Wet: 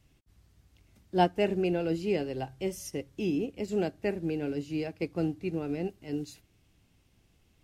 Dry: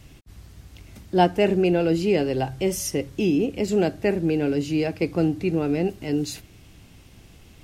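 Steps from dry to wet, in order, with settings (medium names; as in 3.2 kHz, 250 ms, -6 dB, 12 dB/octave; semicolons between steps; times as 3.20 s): upward expansion 1.5:1, over -37 dBFS; trim -5.5 dB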